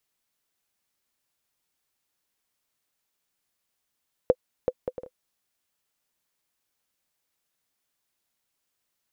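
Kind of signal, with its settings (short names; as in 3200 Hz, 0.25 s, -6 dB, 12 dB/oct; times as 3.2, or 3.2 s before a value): bouncing ball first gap 0.38 s, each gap 0.52, 506 Hz, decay 51 ms -7 dBFS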